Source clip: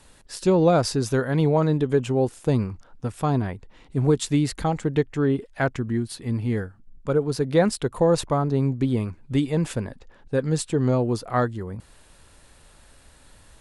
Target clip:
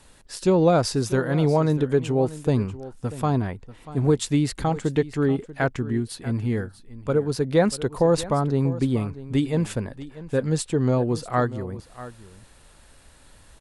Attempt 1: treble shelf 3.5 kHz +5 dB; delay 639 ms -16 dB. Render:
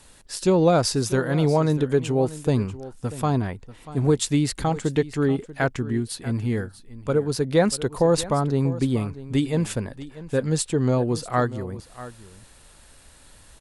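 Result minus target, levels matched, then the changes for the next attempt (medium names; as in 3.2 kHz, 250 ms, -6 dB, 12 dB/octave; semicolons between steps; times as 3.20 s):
8 kHz band +4.0 dB
remove: treble shelf 3.5 kHz +5 dB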